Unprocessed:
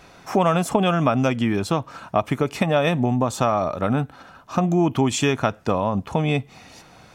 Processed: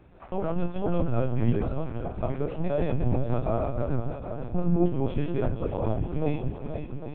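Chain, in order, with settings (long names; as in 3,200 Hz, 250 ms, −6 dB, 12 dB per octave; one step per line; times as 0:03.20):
reversed piece by piece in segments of 108 ms
octave-band graphic EQ 125/250/500/1,000/2,000 Hz +10/−5/+5/−6/−3 dB
brickwall limiter −10.5 dBFS, peak gain reduction 4.5 dB
high-frequency loss of the air 490 metres
tuned comb filter 58 Hz, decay 0.32 s, harmonics all, mix 90%
feedback echo with a long and a short gap by turns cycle 800 ms, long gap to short 1.5 to 1, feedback 50%, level −9.5 dB
linear-prediction vocoder at 8 kHz pitch kept
level +1 dB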